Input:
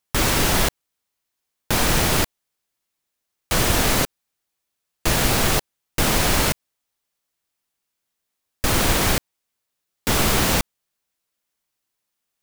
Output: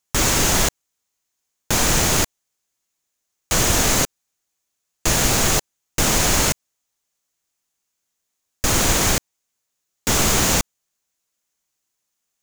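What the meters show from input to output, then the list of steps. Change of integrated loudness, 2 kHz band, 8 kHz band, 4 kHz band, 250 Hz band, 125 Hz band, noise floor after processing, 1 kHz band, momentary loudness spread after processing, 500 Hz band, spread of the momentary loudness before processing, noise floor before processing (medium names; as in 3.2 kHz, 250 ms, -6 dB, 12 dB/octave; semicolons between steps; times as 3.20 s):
+2.0 dB, 0.0 dB, +6.0 dB, +1.5 dB, 0.0 dB, 0.0 dB, -78 dBFS, 0.0 dB, 9 LU, 0.0 dB, 9 LU, -80 dBFS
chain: peaking EQ 6.7 kHz +9.5 dB 0.46 oct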